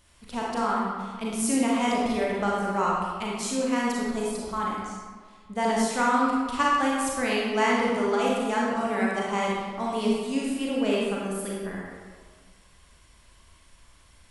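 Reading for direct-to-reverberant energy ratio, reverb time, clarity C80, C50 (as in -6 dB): -4.5 dB, 1.6 s, 1.0 dB, -1.5 dB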